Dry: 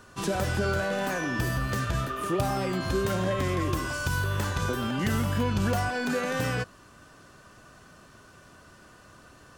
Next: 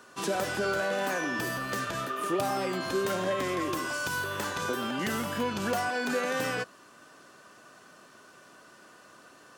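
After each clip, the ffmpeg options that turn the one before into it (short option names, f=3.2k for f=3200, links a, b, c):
-af "highpass=260"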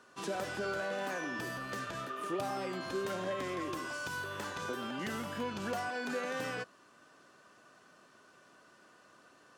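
-af "highshelf=f=11k:g=-10.5,volume=-7dB"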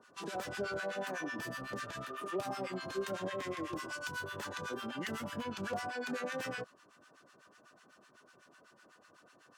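-filter_complex "[0:a]acrossover=split=980[a][b];[a]aeval=exprs='val(0)*(1-1/2+1/2*cos(2*PI*8*n/s))':c=same[c];[b]aeval=exprs='val(0)*(1-1/2-1/2*cos(2*PI*8*n/s))':c=same[d];[c][d]amix=inputs=2:normalize=0,volume=3dB"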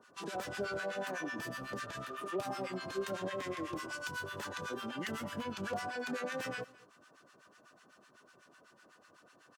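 -af "aecho=1:1:213:0.0841"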